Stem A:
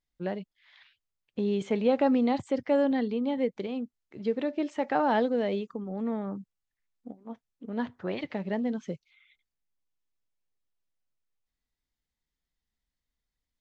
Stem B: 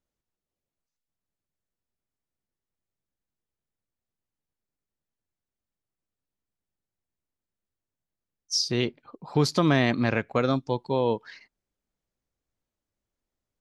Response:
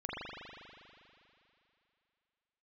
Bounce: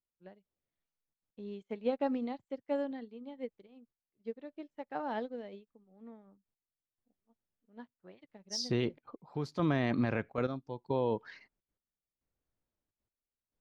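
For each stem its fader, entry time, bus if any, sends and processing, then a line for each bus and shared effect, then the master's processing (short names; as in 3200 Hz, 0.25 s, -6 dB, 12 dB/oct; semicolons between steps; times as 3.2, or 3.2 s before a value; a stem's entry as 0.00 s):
-5.5 dB, 0.00 s, no send, upward expander 2.5:1, over -45 dBFS
-2.0 dB, 0.00 s, no send, de-esser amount 45%; high shelf 3400 Hz -12 dB; step gate ".....xxxxxxxx.x" 172 bpm -12 dB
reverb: off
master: limiter -20.5 dBFS, peak gain reduction 7.5 dB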